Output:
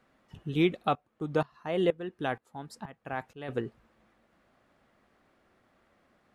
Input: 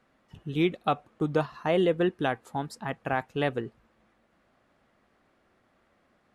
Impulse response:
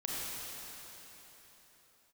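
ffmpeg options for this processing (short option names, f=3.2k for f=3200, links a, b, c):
-filter_complex "[0:a]asplit=3[a][b][c];[a]afade=t=out:st=0.87:d=0.02[d];[b]aeval=exprs='val(0)*pow(10,-18*if(lt(mod(-2.1*n/s,1),2*abs(-2.1)/1000),1-mod(-2.1*n/s,1)/(2*abs(-2.1)/1000),(mod(-2.1*n/s,1)-2*abs(-2.1)/1000)/(1-2*abs(-2.1)/1000))/20)':c=same,afade=t=in:st=0.87:d=0.02,afade=t=out:st=3.48:d=0.02[e];[c]afade=t=in:st=3.48:d=0.02[f];[d][e][f]amix=inputs=3:normalize=0"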